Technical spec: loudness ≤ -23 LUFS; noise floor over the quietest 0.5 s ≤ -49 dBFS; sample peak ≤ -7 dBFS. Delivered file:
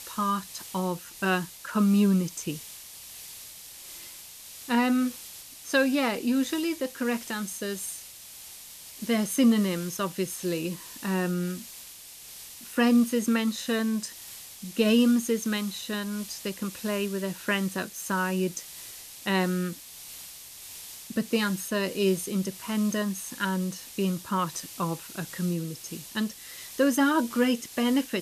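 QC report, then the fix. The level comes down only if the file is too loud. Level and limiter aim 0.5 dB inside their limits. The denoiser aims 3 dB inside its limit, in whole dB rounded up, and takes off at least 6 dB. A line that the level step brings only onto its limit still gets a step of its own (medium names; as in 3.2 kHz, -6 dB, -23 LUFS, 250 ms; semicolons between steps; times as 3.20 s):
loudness -28.0 LUFS: pass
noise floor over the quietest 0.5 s -46 dBFS: fail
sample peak -11.0 dBFS: pass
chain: noise reduction 6 dB, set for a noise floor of -46 dBFS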